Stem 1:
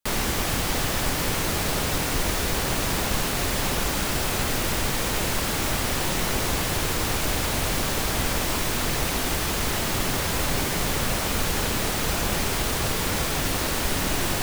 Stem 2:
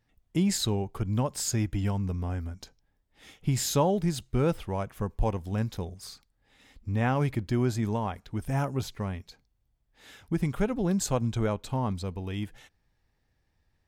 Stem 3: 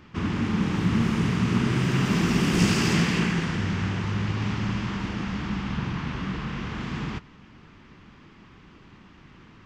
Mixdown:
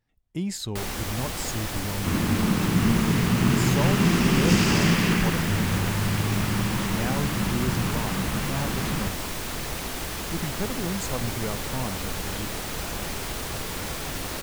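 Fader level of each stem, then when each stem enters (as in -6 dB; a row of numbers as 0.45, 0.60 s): -6.5, -4.0, +1.5 dB; 0.70, 0.00, 1.90 s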